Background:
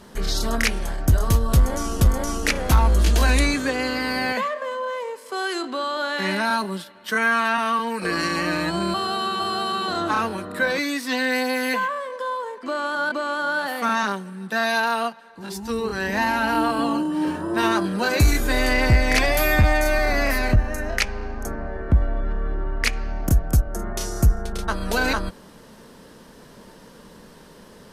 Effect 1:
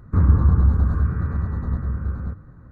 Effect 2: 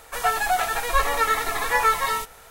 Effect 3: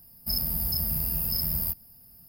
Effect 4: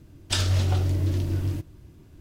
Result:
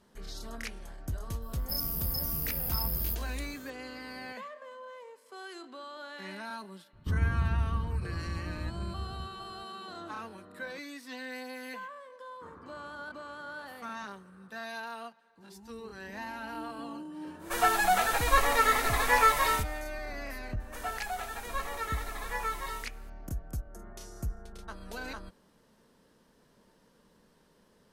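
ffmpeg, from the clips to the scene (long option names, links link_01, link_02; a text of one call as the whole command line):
ffmpeg -i bed.wav -i cue0.wav -i cue1.wav -i cue2.wav -filter_complex "[1:a]asplit=2[link_01][link_02];[2:a]asplit=2[link_03][link_04];[0:a]volume=-18.5dB[link_05];[3:a]acontrast=56[link_06];[link_01]lowpass=1100[link_07];[link_02]highpass=500[link_08];[link_06]atrim=end=2.28,asetpts=PTS-STARTPTS,volume=-11.5dB,afade=type=in:duration=0.004:curve=hsin,afade=type=out:start_time=2.276:duration=0.004:curve=hsin,adelay=1420[link_09];[link_07]atrim=end=2.71,asetpts=PTS-STARTPTS,volume=-13dB,afade=type=in:duration=0.004:curve=hsin,afade=type=out:start_time=2.706:duration=0.004:curve=hsin,adelay=6930[link_10];[link_08]atrim=end=2.71,asetpts=PTS-STARTPTS,volume=-16dB,afade=type=in:duration=0.004:curve=hsin,afade=type=out:start_time=2.706:duration=0.004:curve=hsin,adelay=12280[link_11];[link_03]atrim=end=2.5,asetpts=PTS-STARTPTS,volume=-3dB,afade=type=in:duration=0.1,afade=type=out:start_time=2.4:duration=0.1,adelay=17380[link_12];[link_04]atrim=end=2.5,asetpts=PTS-STARTPTS,volume=-14.5dB,afade=type=in:duration=0.004:curve=hsin,afade=type=out:start_time=2.496:duration=0.004:curve=hsin,adelay=20600[link_13];[link_05][link_09][link_10][link_11][link_12][link_13]amix=inputs=6:normalize=0" out.wav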